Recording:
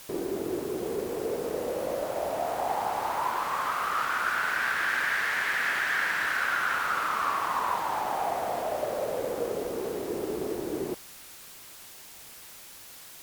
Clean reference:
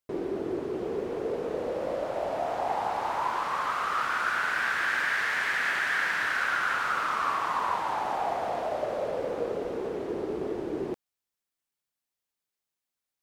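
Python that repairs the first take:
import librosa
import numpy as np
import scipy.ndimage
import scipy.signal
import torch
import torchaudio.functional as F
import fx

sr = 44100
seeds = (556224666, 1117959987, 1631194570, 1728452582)

y = fx.noise_reduce(x, sr, print_start_s=11.69, print_end_s=12.19, reduce_db=30.0)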